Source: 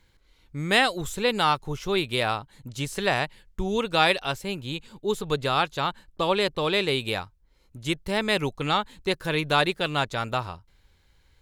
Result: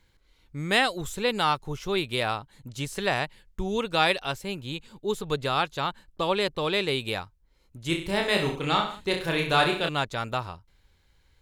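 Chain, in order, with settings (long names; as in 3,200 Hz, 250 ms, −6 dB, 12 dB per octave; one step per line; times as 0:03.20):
0:07.87–0:09.89: reverse bouncing-ball delay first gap 30 ms, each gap 1.1×, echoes 5
level −2 dB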